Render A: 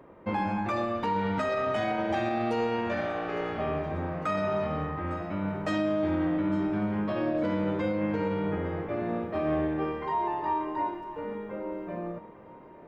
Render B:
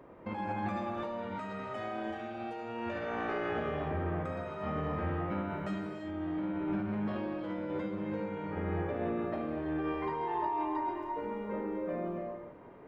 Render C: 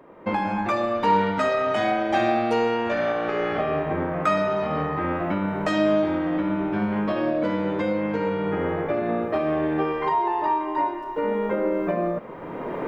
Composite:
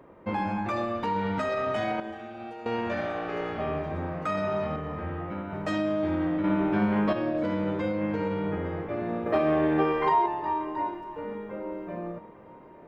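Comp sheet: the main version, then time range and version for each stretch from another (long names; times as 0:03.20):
A
0:02.00–0:02.66: punch in from B
0:04.76–0:05.53: punch in from B
0:06.44–0:07.13: punch in from C
0:09.26–0:10.26: punch in from C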